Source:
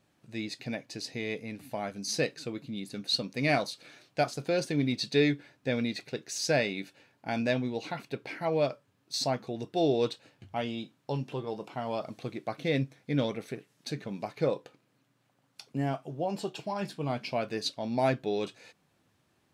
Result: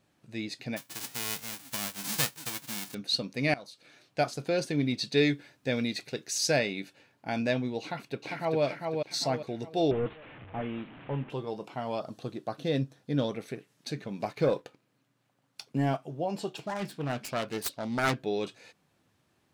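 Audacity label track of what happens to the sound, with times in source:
0.760000	2.930000	formants flattened exponent 0.1
3.540000	4.200000	fade in linear, from -20.5 dB
5.170000	6.590000	treble shelf 4.3 kHz +6.5 dB
7.820000	8.620000	echo throw 400 ms, feedback 40%, level -3.5 dB
9.910000	11.300000	one-bit delta coder 16 kbps, step -42.5 dBFS
12.000000	13.340000	peaking EQ 2.2 kHz -14.5 dB 0.27 oct
14.200000	15.970000	waveshaping leveller passes 1
16.570000	18.200000	self-modulated delay depth 0.49 ms

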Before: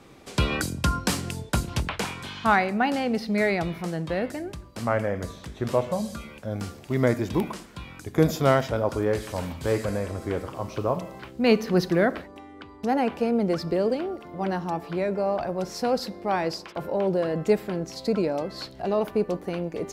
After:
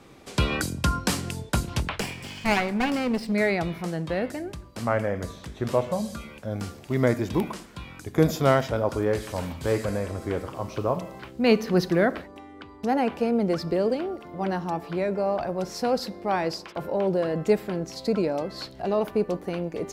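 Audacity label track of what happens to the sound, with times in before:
2.000000	3.320000	comb filter that takes the minimum delay 0.38 ms

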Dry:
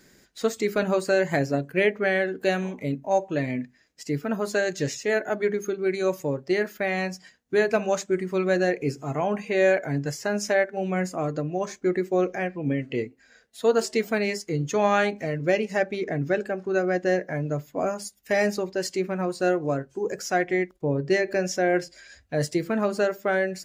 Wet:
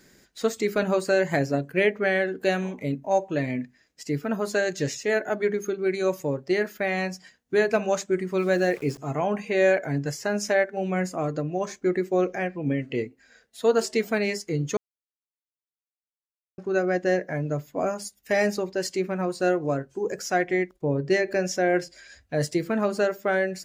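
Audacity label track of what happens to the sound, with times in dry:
8.380000	8.980000	small samples zeroed under -42 dBFS
14.770000	16.580000	mute

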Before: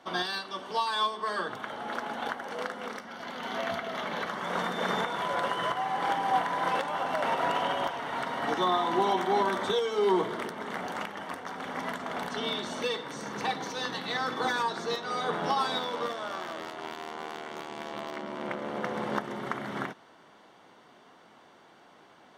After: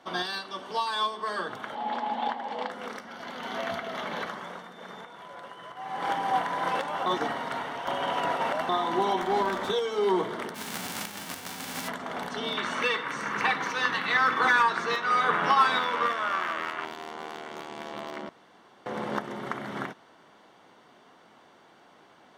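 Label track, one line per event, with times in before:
1.750000	2.710000	cabinet simulation 210–6900 Hz, peaks and dips at 230 Hz +7 dB, 370 Hz -5 dB, 850 Hz +10 dB, 1.4 kHz -9 dB, 3.4 kHz +3 dB, 6.1 kHz -10 dB
4.220000	6.110000	dip -14 dB, fades 0.39 s
7.060000	8.690000	reverse
9.220000	9.690000	sliding maximum over 3 samples
10.540000	11.870000	formants flattened exponent 0.3
12.570000	16.850000	high-order bell 1.7 kHz +10.5 dB
18.290000	18.860000	room tone

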